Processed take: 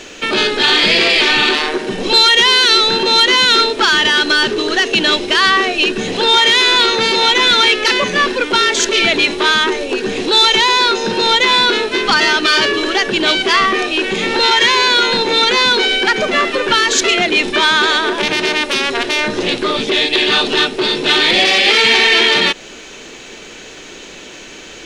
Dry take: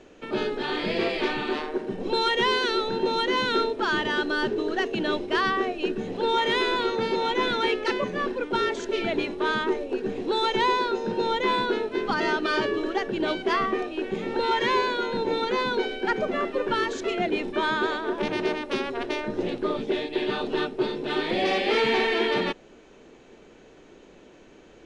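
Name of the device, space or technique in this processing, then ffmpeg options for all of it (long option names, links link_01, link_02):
mastering chain: -af "equalizer=frequency=1000:width_type=o:width=2.4:gain=-3,acompressor=threshold=-29dB:ratio=2.5,asoftclip=type=tanh:threshold=-23dB,tiltshelf=frequency=1200:gain=-9,alimiter=level_in=22dB:limit=-1dB:release=50:level=0:latency=1,volume=-1dB"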